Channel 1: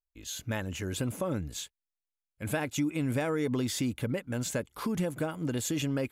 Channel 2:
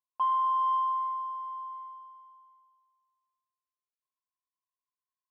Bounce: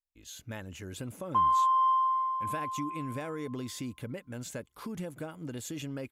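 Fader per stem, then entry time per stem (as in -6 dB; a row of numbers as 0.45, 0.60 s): -7.5, +2.0 dB; 0.00, 1.15 s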